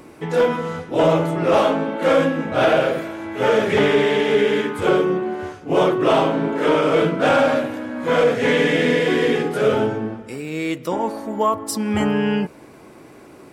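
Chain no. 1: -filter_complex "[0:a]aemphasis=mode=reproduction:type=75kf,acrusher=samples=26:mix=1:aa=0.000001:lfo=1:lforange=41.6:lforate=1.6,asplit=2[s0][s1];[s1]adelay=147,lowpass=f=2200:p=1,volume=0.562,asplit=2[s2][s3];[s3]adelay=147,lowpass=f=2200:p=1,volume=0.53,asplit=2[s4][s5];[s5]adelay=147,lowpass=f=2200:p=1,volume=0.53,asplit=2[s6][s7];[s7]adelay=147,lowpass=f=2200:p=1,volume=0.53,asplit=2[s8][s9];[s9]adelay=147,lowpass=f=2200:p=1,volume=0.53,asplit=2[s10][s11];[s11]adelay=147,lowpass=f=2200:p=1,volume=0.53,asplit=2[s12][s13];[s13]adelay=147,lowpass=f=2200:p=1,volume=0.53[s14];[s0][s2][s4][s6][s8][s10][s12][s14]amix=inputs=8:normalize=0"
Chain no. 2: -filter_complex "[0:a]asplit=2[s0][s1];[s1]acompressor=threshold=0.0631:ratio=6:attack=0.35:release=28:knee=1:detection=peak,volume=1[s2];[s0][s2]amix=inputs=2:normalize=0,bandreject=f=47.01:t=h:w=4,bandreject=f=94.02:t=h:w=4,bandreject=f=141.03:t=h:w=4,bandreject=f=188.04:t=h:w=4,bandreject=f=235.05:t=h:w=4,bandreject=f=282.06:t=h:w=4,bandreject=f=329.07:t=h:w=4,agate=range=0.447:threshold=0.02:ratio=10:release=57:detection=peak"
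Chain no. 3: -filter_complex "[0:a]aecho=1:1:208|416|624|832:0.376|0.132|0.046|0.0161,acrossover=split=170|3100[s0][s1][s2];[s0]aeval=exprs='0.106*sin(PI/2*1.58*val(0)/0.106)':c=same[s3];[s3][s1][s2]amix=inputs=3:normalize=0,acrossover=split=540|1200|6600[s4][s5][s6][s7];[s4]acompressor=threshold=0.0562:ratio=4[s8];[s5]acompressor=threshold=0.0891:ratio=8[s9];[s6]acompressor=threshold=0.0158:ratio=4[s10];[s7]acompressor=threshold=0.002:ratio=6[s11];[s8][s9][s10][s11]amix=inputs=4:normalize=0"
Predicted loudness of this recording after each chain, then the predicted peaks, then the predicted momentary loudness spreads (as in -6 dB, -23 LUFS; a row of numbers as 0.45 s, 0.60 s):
-18.0 LUFS, -17.0 LUFS, -23.0 LUFS; -4.5 dBFS, -4.0 dBFS, -9.0 dBFS; 9 LU, 7 LU, 6 LU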